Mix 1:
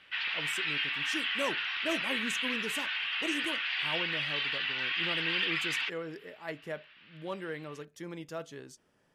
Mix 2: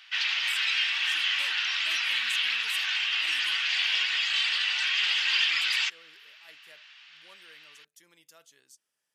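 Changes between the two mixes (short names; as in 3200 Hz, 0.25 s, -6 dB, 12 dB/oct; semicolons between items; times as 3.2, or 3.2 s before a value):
speech: add pre-emphasis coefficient 0.97; background: remove air absorption 370 m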